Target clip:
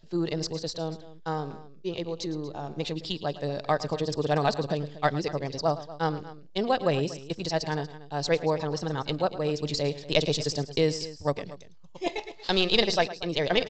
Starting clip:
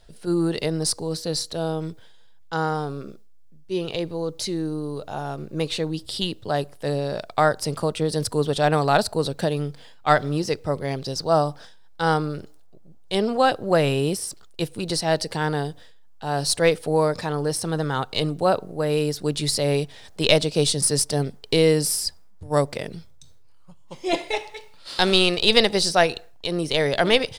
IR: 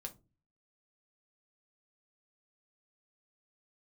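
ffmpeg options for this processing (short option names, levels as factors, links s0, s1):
-filter_complex "[0:a]atempo=2,bandreject=f=1400:w=11,asplit=2[s0][s1];[s1]aecho=0:1:109|237:0.168|0.141[s2];[s0][s2]amix=inputs=2:normalize=0,aresample=16000,aresample=44100,volume=0.562"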